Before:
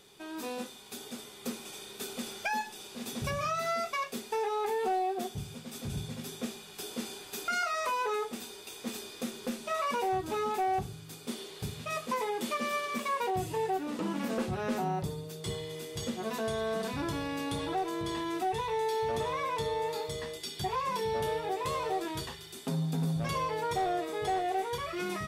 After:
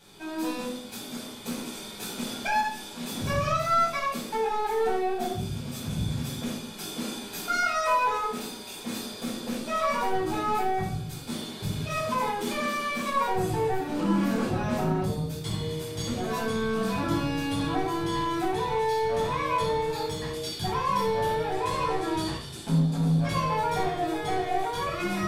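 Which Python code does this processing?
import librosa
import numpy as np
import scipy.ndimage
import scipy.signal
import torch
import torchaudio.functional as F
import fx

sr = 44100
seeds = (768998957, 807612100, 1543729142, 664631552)

y = fx.steep_lowpass(x, sr, hz=12000.0, slope=36, at=(21.51, 23.31))
y = 10.0 ** (-28.0 / 20.0) * np.tanh(y / 10.0 ** (-28.0 / 20.0))
y = fx.room_shoebox(y, sr, seeds[0], volume_m3=790.0, walls='furnished', distance_m=8.2)
y = y * librosa.db_to_amplitude(-3.0)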